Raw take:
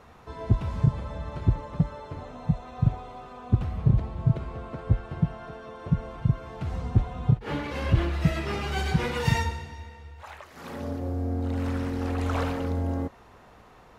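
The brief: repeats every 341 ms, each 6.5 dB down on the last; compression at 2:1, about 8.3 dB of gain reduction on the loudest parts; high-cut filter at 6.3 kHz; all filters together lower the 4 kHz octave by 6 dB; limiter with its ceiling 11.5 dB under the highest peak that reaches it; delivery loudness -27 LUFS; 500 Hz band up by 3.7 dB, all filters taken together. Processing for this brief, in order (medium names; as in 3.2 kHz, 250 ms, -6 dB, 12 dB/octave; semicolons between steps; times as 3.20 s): low-pass 6.3 kHz; peaking EQ 500 Hz +4.5 dB; peaking EQ 4 kHz -8 dB; compression 2:1, threshold -31 dBFS; peak limiter -28.5 dBFS; feedback delay 341 ms, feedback 47%, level -6.5 dB; trim +10 dB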